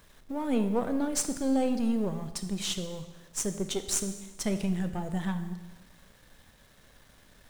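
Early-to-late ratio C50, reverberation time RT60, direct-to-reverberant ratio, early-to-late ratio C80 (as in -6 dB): 10.5 dB, 1.1 s, 8.5 dB, 12.0 dB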